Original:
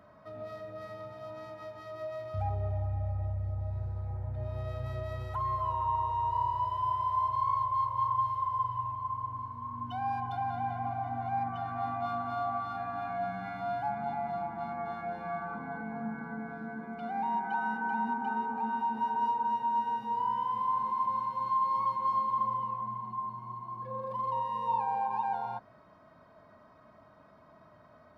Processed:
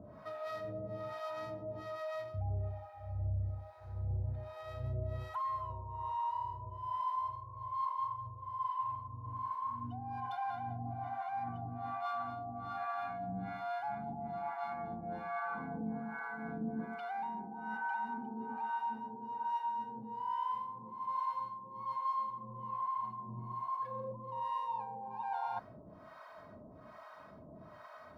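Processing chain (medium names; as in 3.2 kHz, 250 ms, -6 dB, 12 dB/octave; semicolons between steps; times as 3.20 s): reverse; compression 6:1, threshold -42 dBFS, peak gain reduction 15.5 dB; reverse; harmonic tremolo 1.2 Hz, depth 100%, crossover 630 Hz; trim +9.5 dB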